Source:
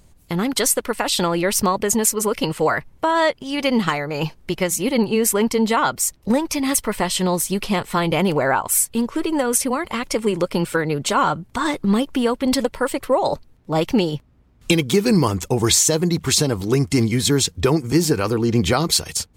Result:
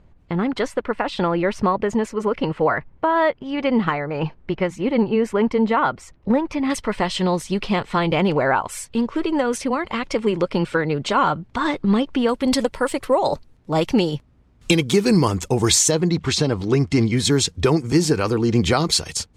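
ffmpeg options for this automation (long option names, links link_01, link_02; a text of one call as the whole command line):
ffmpeg -i in.wav -af "asetnsamples=nb_out_samples=441:pad=0,asendcmd='6.7 lowpass f 4200;12.29 lowpass f 9800;15.91 lowpass f 4500;17.17 lowpass f 8100',lowpass=2100" out.wav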